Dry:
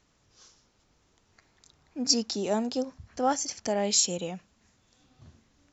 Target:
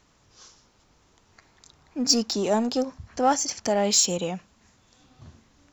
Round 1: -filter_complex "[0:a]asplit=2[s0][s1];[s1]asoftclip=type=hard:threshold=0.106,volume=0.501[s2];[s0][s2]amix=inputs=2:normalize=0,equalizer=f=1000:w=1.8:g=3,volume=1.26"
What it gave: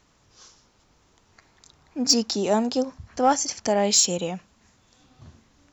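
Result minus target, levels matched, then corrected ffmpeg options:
hard clipper: distortion -9 dB
-filter_complex "[0:a]asplit=2[s0][s1];[s1]asoftclip=type=hard:threshold=0.0355,volume=0.501[s2];[s0][s2]amix=inputs=2:normalize=0,equalizer=f=1000:w=1.8:g=3,volume=1.26"

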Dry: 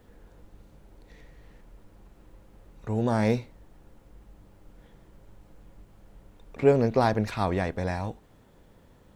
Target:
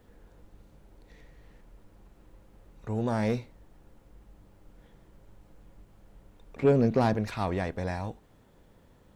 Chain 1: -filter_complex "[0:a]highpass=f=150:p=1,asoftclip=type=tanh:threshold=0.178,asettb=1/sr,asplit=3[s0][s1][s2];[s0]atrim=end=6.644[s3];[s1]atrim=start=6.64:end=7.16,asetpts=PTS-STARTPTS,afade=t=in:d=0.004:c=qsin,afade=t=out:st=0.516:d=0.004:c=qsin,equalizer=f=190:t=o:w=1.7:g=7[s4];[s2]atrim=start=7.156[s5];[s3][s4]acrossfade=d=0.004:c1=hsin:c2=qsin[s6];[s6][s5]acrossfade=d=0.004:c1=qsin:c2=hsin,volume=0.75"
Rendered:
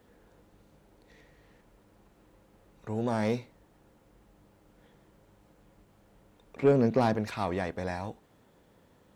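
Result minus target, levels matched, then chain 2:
125 Hz band -2.5 dB
-filter_complex "[0:a]asoftclip=type=tanh:threshold=0.178,asettb=1/sr,asplit=3[s0][s1][s2];[s0]atrim=end=6.644[s3];[s1]atrim=start=6.64:end=7.16,asetpts=PTS-STARTPTS,afade=t=in:d=0.004:c=qsin,afade=t=out:st=0.516:d=0.004:c=qsin,equalizer=f=190:t=o:w=1.7:g=7[s4];[s2]atrim=start=7.156[s5];[s3][s4]acrossfade=d=0.004:c1=hsin:c2=qsin[s6];[s6][s5]acrossfade=d=0.004:c1=qsin:c2=hsin,volume=0.75"

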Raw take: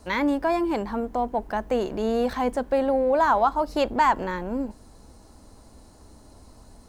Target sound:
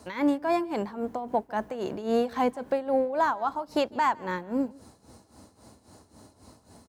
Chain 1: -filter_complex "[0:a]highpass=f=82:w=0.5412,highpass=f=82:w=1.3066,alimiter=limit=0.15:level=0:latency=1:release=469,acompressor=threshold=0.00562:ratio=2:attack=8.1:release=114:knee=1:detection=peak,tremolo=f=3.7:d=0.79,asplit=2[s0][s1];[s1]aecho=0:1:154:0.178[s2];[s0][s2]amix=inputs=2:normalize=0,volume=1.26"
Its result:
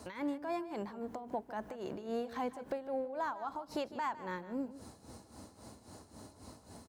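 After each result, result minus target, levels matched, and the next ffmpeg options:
compression: peak gain reduction +13 dB; echo-to-direct +9.5 dB
-filter_complex "[0:a]highpass=f=82:w=0.5412,highpass=f=82:w=1.3066,alimiter=limit=0.15:level=0:latency=1:release=469,tremolo=f=3.7:d=0.79,asplit=2[s0][s1];[s1]aecho=0:1:154:0.178[s2];[s0][s2]amix=inputs=2:normalize=0,volume=1.26"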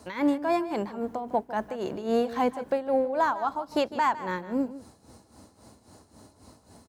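echo-to-direct +9.5 dB
-filter_complex "[0:a]highpass=f=82:w=0.5412,highpass=f=82:w=1.3066,alimiter=limit=0.15:level=0:latency=1:release=469,tremolo=f=3.7:d=0.79,asplit=2[s0][s1];[s1]aecho=0:1:154:0.0596[s2];[s0][s2]amix=inputs=2:normalize=0,volume=1.26"

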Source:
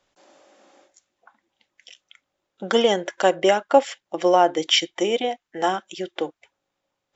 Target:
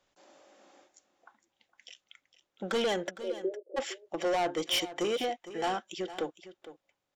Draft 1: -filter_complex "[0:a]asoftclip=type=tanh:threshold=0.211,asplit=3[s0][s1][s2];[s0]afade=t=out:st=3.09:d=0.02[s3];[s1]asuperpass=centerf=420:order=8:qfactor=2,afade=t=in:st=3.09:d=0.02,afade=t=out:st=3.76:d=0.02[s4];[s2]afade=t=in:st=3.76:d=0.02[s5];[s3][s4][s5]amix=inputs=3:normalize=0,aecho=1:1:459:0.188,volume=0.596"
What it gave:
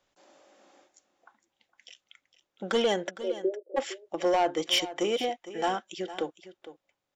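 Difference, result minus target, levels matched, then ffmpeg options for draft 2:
saturation: distortion -5 dB
-filter_complex "[0:a]asoftclip=type=tanh:threshold=0.0944,asplit=3[s0][s1][s2];[s0]afade=t=out:st=3.09:d=0.02[s3];[s1]asuperpass=centerf=420:order=8:qfactor=2,afade=t=in:st=3.09:d=0.02,afade=t=out:st=3.76:d=0.02[s4];[s2]afade=t=in:st=3.76:d=0.02[s5];[s3][s4][s5]amix=inputs=3:normalize=0,aecho=1:1:459:0.188,volume=0.596"

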